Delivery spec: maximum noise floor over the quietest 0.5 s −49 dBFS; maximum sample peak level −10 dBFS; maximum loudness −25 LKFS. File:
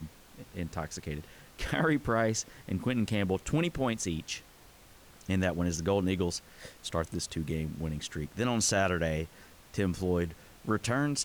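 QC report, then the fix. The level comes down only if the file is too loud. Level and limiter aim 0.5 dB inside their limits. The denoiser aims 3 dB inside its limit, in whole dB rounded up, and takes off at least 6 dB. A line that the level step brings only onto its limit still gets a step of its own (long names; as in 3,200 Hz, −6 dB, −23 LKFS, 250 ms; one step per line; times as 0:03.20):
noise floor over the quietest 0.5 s −56 dBFS: in spec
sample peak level −16.5 dBFS: in spec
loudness −32.0 LKFS: in spec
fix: no processing needed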